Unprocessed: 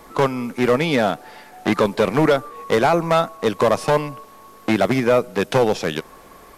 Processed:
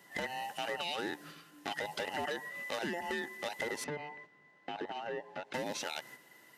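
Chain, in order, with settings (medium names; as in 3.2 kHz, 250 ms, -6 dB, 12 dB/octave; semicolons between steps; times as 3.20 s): every band turned upside down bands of 1 kHz; high-pass 210 Hz 12 dB/octave; gate -40 dBFS, range -7 dB; peaking EQ 640 Hz -11 dB 1.4 oct; peak limiter -18 dBFS, peak gain reduction 8 dB; compression 3:1, threshold -30 dBFS, peak gain reduction 6 dB; 3.84–5.54 s: tape spacing loss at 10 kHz 29 dB; trim -4.5 dB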